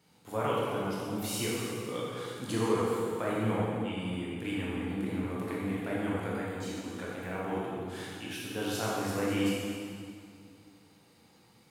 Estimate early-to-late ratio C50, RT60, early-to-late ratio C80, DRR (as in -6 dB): -3.0 dB, 2.3 s, -1.0 dB, -6.5 dB